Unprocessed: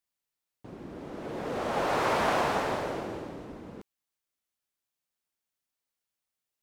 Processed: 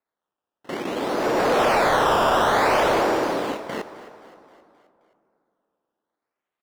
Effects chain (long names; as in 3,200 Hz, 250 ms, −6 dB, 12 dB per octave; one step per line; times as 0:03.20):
noise gate with hold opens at −34 dBFS
high-pass filter 230 Hz 6 dB per octave
in parallel at +3 dB: compressor whose output falls as the input rises −33 dBFS
on the sum: sample-and-hold swept by an LFO 14×, swing 100% 0.56 Hz
mid-hump overdrive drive 19 dB, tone 2,200 Hz, clips at −13 dBFS
echo with shifted repeats 263 ms, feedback 53%, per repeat +38 Hz, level −17 dB
on a send at −14 dB: convolution reverb RT60 2.9 s, pre-delay 8 ms
on the sum: level +1.5 dB